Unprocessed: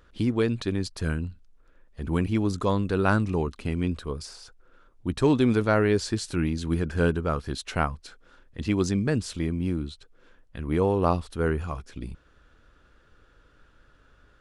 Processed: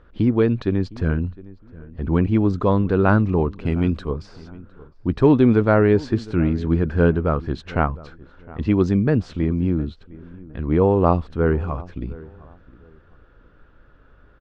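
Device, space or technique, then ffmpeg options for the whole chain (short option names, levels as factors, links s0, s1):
through cloth: -filter_complex "[0:a]asettb=1/sr,asplit=3[s0][s1][s2];[s0]atrim=end=3.664[s3];[s1]atrim=start=3.66:end=4.08,asetpts=PTS-STARTPTS,afade=t=in:d=0.004:c=qsin,afade=t=out:st=0.416:d=0.004:c=qsin,aemphasis=mode=production:type=75kf[s4];[s2]atrim=start=4.076[s5];[s3][s4]acrossfade=d=0.004:c1=hsin:c2=qsin[s6];[s6][s5]acrossfade=d=0.004:c1=qsin:c2=hsin,lowpass=5500,lowpass=7900,highshelf=f=2800:g=-17,asplit=2[s7][s8];[s8]adelay=710,lowpass=f=1800:p=1,volume=0.1,asplit=2[s9][s10];[s10]adelay=710,lowpass=f=1800:p=1,volume=0.26[s11];[s7][s9][s11]amix=inputs=3:normalize=0,volume=2.24"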